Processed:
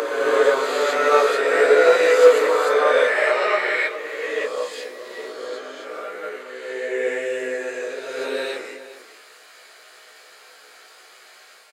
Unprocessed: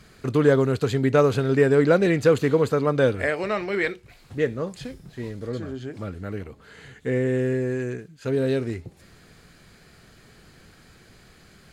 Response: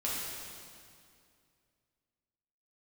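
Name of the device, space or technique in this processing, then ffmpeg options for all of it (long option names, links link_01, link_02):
ghost voice: -filter_complex "[0:a]asplit=2[link_01][link_02];[link_02]adelay=16,volume=-5dB[link_03];[link_01][link_03]amix=inputs=2:normalize=0,asplit=2[link_04][link_05];[link_05]adelay=408.2,volume=-13dB,highshelf=frequency=4000:gain=-9.18[link_06];[link_04][link_06]amix=inputs=2:normalize=0,bandreject=frequency=59.52:width_type=h:width=4,bandreject=frequency=119.04:width_type=h:width=4,bandreject=frequency=178.56:width_type=h:width=4,bandreject=frequency=238.08:width_type=h:width=4,bandreject=frequency=297.6:width_type=h:width=4,bandreject=frequency=357.12:width_type=h:width=4,bandreject=frequency=416.64:width_type=h:width=4,bandreject=frequency=476.16:width_type=h:width=4,bandreject=frequency=535.68:width_type=h:width=4,bandreject=frequency=595.2:width_type=h:width=4,bandreject=frequency=654.72:width_type=h:width=4,bandreject=frequency=714.24:width_type=h:width=4,bandreject=frequency=773.76:width_type=h:width=4,bandreject=frequency=833.28:width_type=h:width=4,bandreject=frequency=892.8:width_type=h:width=4,bandreject=frequency=952.32:width_type=h:width=4,bandreject=frequency=1011.84:width_type=h:width=4,bandreject=frequency=1071.36:width_type=h:width=4,bandreject=frequency=1130.88:width_type=h:width=4,bandreject=frequency=1190.4:width_type=h:width=4,bandreject=frequency=1249.92:width_type=h:width=4,bandreject=frequency=1309.44:width_type=h:width=4,bandreject=frequency=1368.96:width_type=h:width=4,bandreject=frequency=1428.48:width_type=h:width=4,bandreject=frequency=1488:width_type=h:width=4,bandreject=frequency=1547.52:width_type=h:width=4,bandreject=frequency=1607.04:width_type=h:width=4,bandreject=frequency=1666.56:width_type=h:width=4,bandreject=frequency=1726.08:width_type=h:width=4,areverse[link_07];[1:a]atrim=start_sample=2205[link_08];[link_07][link_08]afir=irnorm=-1:irlink=0,areverse,highpass=frequency=530:width=0.5412,highpass=frequency=530:width=1.3066,volume=2dB"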